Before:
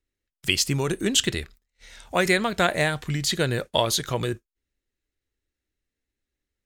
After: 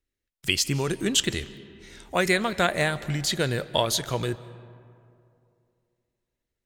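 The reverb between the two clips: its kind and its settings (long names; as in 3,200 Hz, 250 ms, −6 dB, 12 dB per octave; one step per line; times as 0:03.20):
comb and all-pass reverb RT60 2.6 s, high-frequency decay 0.45×, pre-delay 115 ms, DRR 16.5 dB
level −1.5 dB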